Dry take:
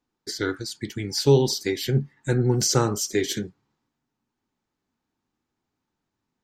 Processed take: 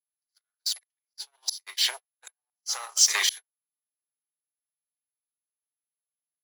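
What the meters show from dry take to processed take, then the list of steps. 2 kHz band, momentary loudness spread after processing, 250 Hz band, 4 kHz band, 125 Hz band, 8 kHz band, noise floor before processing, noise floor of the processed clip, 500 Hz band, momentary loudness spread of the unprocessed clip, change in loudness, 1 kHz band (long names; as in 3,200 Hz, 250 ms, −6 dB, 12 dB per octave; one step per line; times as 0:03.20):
+0.5 dB, 22 LU, below −40 dB, +3.0 dB, below −40 dB, +2.5 dB, −83 dBFS, below −85 dBFS, −29.0 dB, 13 LU, −1.5 dB, −8.5 dB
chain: high-frequency loss of the air 99 metres
echo ahead of the sound 69 ms −17 dB
leveller curve on the samples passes 3
downward compressor 16 to 1, threshold −14 dBFS, peak gain reduction 6 dB
Butterworth high-pass 690 Hz 36 dB per octave
volume swells 675 ms
high-shelf EQ 2,900 Hz +11.5 dB
steady tone 11,000 Hz −41 dBFS
noise gate −31 dBFS, range −51 dB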